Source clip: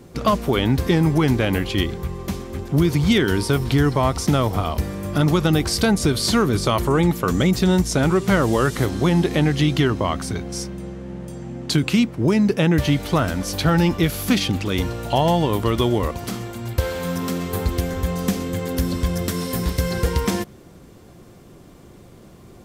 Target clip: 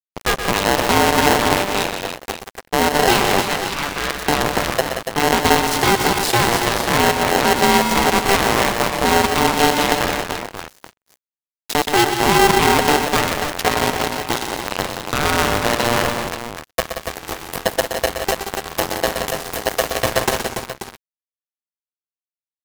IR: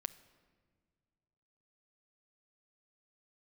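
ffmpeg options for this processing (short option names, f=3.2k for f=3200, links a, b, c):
-filter_complex "[0:a]alimiter=limit=-11.5dB:level=0:latency=1:release=16,acrusher=bits=2:mix=0:aa=0.5,asplit=3[a][b][c];[a]afade=t=out:st=3.46:d=0.02[d];[b]highpass=800,lowpass=6.7k,afade=t=in:st=3.46:d=0.02,afade=t=out:st=4.09:d=0.02[e];[c]afade=t=in:st=4.09:d=0.02[f];[d][e][f]amix=inputs=3:normalize=0,asettb=1/sr,asplit=3[g][h][i];[g]atrim=end=13.684[j];[h]atrim=start=13.68:end=14.78,asetpts=PTS-STARTPTS,afade=t=in:d=0.004:c=qsin,afade=t=out:st=1.096:d=0.004:c=qsin,tremolo=f=120:d=1[k];[i]atrim=start=14.776[l];[j][k]acrossfade=d=0.004:c1=hsin:c2=qsin[m];[m][l]acrossfade=d=0.004:c1=qsin:c2=hsin,asplit=2[n][o];[o]aecho=0:1:122|179|285|535:0.376|0.355|0.422|0.282[p];[n][p]amix=inputs=2:normalize=0,aeval=exprs='val(0)*sgn(sin(2*PI*590*n/s))':c=same,volume=2dB"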